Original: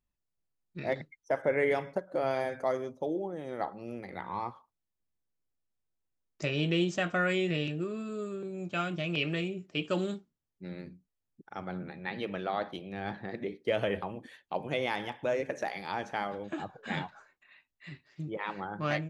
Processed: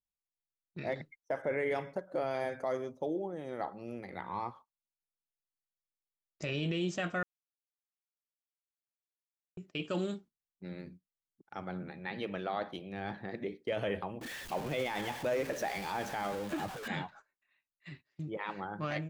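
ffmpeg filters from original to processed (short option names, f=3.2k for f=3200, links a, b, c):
-filter_complex "[0:a]asettb=1/sr,asplit=3[a][b][c];[a]atrim=end=14.214[d];[b]atrim=start=14.21:end=16.88,asetpts=PTS-STARTPTS,afade=t=in:d=0.004:c=qsin,afade=t=out:st=2.666:d=0.004:c=qsin,aeval=exprs='val(0)+0.5*0.0141*sgn(val(0))':c=same[e];[c]atrim=start=16.876[f];[d][e]acrossfade=d=0.004:c1=hsin:c2=qsin[g];[g][f]acrossfade=d=0.004:c1=qsin:c2=hsin,asplit=3[h][i][j];[h]atrim=end=7.23,asetpts=PTS-STARTPTS,afade=t=out:st=7.226:d=0.004:c=hsin[k];[i]atrim=start=7.23:end=9.57,asetpts=PTS-STARTPTS,volume=0[l];[j]atrim=start=9.57,asetpts=PTS-STARTPTS,afade=t=in:d=0.004:c=hsin[m];[k][l][m]concat=n=3:v=0:a=1,agate=range=-15dB:threshold=-51dB:ratio=16:detection=peak,alimiter=limit=-22.5dB:level=0:latency=1:release=10,volume=-2dB"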